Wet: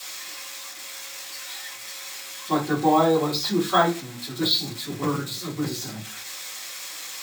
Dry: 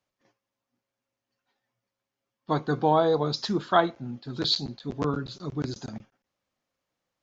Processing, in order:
spike at every zero crossing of −23 dBFS
convolution reverb RT60 0.30 s, pre-delay 3 ms, DRR −11 dB
bad sample-rate conversion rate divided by 2×, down filtered, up hold
level −6 dB

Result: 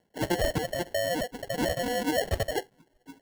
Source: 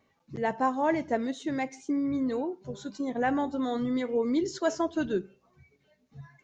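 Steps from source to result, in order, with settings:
wrong playback speed 7.5 ips tape played at 15 ips
decimation without filtering 36×

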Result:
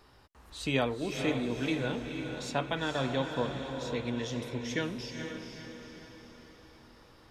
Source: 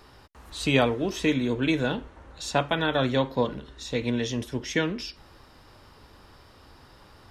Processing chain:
feedback delay with all-pass diffusion 477 ms, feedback 50%, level −6 dB
level −7.5 dB

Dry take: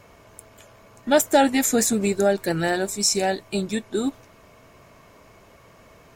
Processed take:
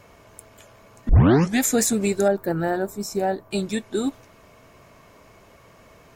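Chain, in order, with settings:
0:01.09: tape start 0.52 s
0:02.28–0:03.51: flat-topped bell 4,600 Hz −14.5 dB 2.7 octaves

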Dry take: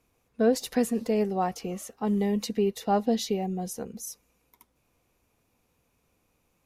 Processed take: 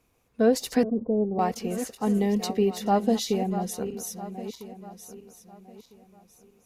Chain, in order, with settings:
feedback delay that plays each chunk backwards 651 ms, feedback 49%, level −11 dB
0:00.83–0:01.39: Bessel low-pass filter 580 Hz, order 8
level +2 dB

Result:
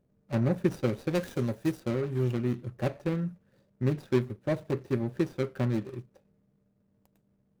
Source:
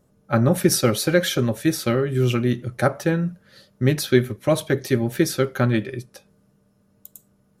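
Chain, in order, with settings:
running median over 41 samples
0:01.15–0:01.80: high-shelf EQ 4,700 Hz +10 dB
level −8 dB

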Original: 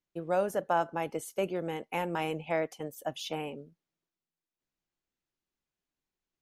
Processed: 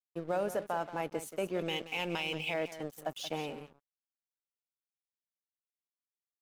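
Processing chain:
0:01.59–0:02.54: flat-topped bell 3,800 Hz +16 dB
brickwall limiter −23 dBFS, peak gain reduction 11.5 dB
single-tap delay 178 ms −11.5 dB
dead-zone distortion −51 dBFS

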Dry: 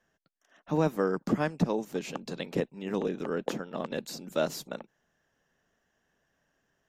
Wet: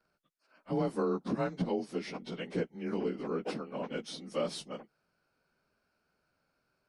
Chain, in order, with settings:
partials spread apart or drawn together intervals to 92%
brickwall limiter −22.5 dBFS, peak gain reduction 6 dB

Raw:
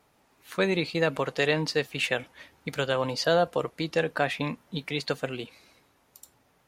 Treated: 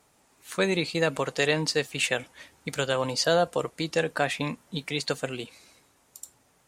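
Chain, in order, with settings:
parametric band 8,000 Hz +11 dB 0.94 octaves

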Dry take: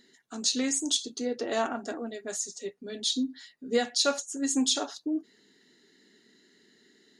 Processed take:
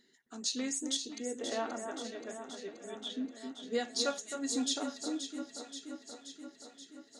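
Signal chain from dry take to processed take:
0:01.18–0:03.25: Chebyshev low-pass filter 3,600 Hz, order 8
delay that swaps between a low-pass and a high-pass 264 ms, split 1,800 Hz, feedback 81%, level −7 dB
level −7.5 dB

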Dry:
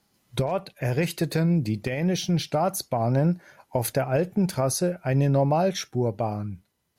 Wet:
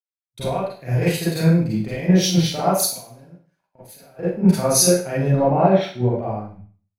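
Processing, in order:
0:02.80–0:04.19: downward compressor 8 to 1, threshold −34 dBFS, peak gain reduction 15.5 dB
0:05.39–0:06.17: low-pass filter 3,800 Hz 24 dB per octave
dead-zone distortion −57.5 dBFS
four-comb reverb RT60 0.6 s, combs from 33 ms, DRR −8 dB
multiband upward and downward expander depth 100%
level −3 dB

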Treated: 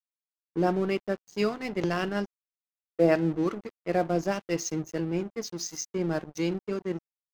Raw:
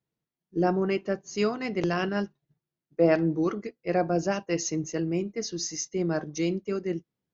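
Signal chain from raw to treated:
dead-zone distortion −41 dBFS
one half of a high-frequency compander decoder only

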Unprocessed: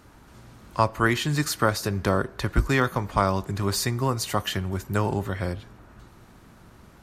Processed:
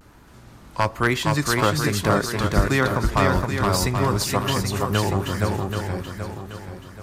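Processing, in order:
pitch vibrato 1.1 Hz 87 cents
wave folding −9.5 dBFS
feedback echo with a long and a short gap by turns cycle 780 ms, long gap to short 1.5 to 1, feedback 35%, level −3 dB
level +1.5 dB

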